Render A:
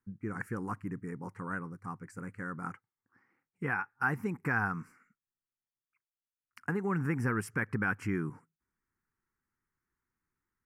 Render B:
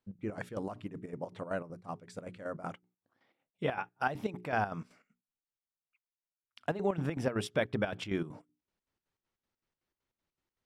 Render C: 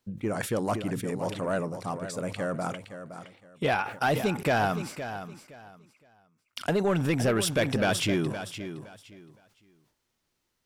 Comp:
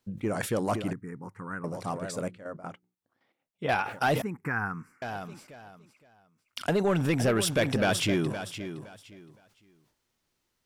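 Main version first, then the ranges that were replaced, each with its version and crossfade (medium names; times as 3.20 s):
C
0.93–1.64 s: from A
2.28–3.69 s: from B
4.22–5.02 s: from A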